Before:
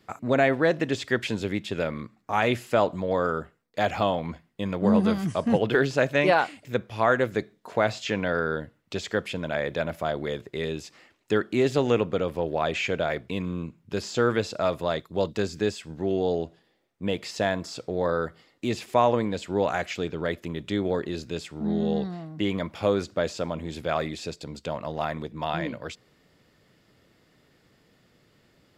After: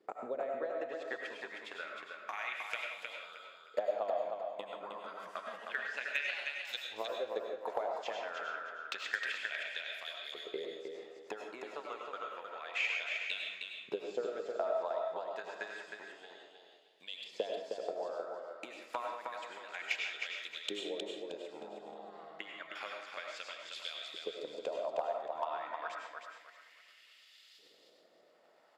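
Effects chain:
downward compressor 4 to 1, threshold −39 dBFS, peak gain reduction 19.5 dB
low-shelf EQ 95 Hz −9.5 dB
de-essing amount 100%
transient designer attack +9 dB, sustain −4 dB
auto-filter band-pass saw up 0.29 Hz 410–4,100 Hz
RIAA equalisation recording
repeating echo 312 ms, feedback 28%, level −5 dB
convolution reverb RT60 0.50 s, pre-delay 60 ms, DRR 1.5 dB
gain into a clipping stage and back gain 25 dB
level +3 dB

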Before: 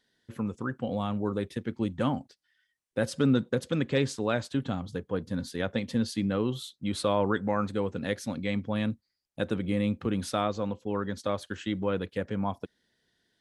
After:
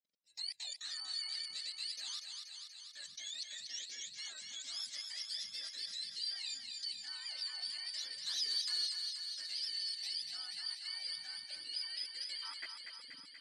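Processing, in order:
frequency axis turned over on the octave scale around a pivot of 960 Hz
output level in coarse steps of 23 dB
0:08.26–0:08.87: leveller curve on the samples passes 2
band-pass filter sweep 5,000 Hz → 310 Hz, 0:12.26–0:13.15
feedback echo with a high-pass in the loop 240 ms, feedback 74%, high-pass 590 Hz, level −5.5 dB
level +8 dB

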